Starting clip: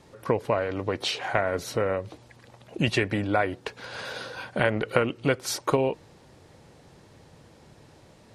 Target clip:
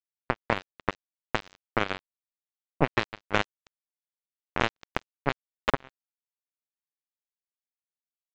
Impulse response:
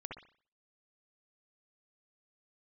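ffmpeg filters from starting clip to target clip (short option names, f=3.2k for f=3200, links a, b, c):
-af "asuperstop=centerf=4700:order=12:qfactor=0.57,alimiter=limit=-14dB:level=0:latency=1:release=463,aresample=16000,acrusher=bits=2:mix=0:aa=0.5,aresample=44100,volume=7dB"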